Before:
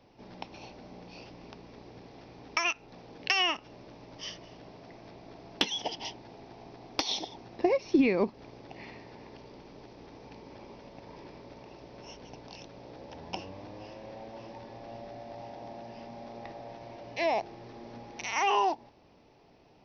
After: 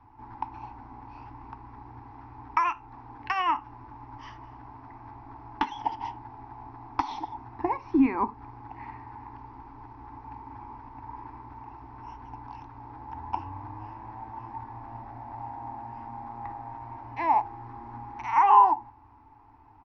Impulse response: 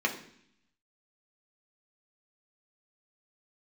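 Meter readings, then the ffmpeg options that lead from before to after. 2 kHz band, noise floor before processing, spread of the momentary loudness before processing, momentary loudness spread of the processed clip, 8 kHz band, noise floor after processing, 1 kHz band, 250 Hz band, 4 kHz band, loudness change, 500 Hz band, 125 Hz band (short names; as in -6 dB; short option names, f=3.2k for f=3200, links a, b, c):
-4.0 dB, -60 dBFS, 23 LU, 21 LU, n/a, -54 dBFS, +10.0 dB, +2.0 dB, -14.0 dB, +3.5 dB, -8.0 dB, +5.0 dB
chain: -filter_complex "[0:a]firequalizer=gain_entry='entry(110,0);entry(170,-28);entry(250,-5);entry(550,-29);entry(860,7);entry(2100,-14);entry(3600,-24);entry(8300,-29)':delay=0.05:min_phase=1,asplit=2[a][b];[1:a]atrim=start_sample=2205,atrim=end_sample=4410,asetrate=48510,aresample=44100[c];[b][c]afir=irnorm=-1:irlink=0,volume=-18dB[d];[a][d]amix=inputs=2:normalize=0,volume=9dB"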